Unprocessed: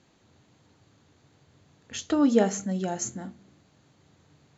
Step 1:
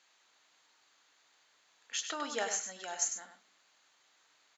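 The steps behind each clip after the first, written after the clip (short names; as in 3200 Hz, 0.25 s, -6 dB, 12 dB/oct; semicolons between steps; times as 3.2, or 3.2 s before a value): HPF 1200 Hz 12 dB/oct; echo 99 ms -8 dB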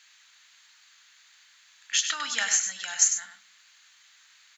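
EQ curve 210 Hz 0 dB, 400 Hz -17 dB, 1700 Hz +12 dB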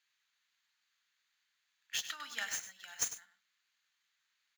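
median filter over 5 samples; upward expander 1.5:1, over -49 dBFS; gain -8 dB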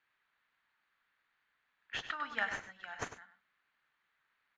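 LPF 1400 Hz 12 dB/oct; gain +10.5 dB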